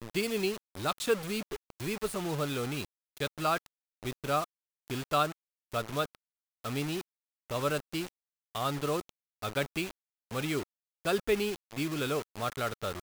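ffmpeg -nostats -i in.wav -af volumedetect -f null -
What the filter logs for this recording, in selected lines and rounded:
mean_volume: -34.3 dB
max_volume: -14.6 dB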